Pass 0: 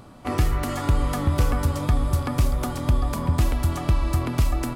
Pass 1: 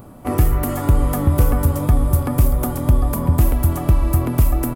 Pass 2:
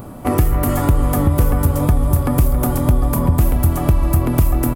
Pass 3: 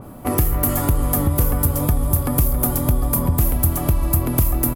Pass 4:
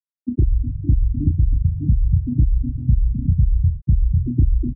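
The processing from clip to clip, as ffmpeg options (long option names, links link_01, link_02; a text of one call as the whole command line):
ffmpeg -i in.wav -af "firequalizer=gain_entry='entry(490,0);entry(1200,-5);entry(4200,-12);entry(13000,9)':delay=0.05:min_phase=1,volume=6dB" out.wav
ffmpeg -i in.wav -filter_complex "[0:a]acompressor=threshold=-23dB:ratio=2,asplit=2[link_01][link_02];[link_02]adelay=274.1,volume=-12dB,highshelf=frequency=4000:gain=-6.17[link_03];[link_01][link_03]amix=inputs=2:normalize=0,volume=7dB" out.wav
ffmpeg -i in.wav -af "aexciter=amount=2.4:drive=1.8:freq=11000,adynamicequalizer=threshold=0.00891:dfrequency=3400:dqfactor=0.7:tfrequency=3400:tqfactor=0.7:attack=5:release=100:ratio=0.375:range=3:mode=boostabove:tftype=highshelf,volume=-4dB" out.wav
ffmpeg -i in.wav -filter_complex "[0:a]afftfilt=real='re*gte(hypot(re,im),0.631)':imag='im*gte(hypot(re,im),0.631)':win_size=1024:overlap=0.75,asplit=2[link_01][link_02];[link_02]adelay=33,volume=-6dB[link_03];[link_01][link_03]amix=inputs=2:normalize=0,volume=2dB" out.wav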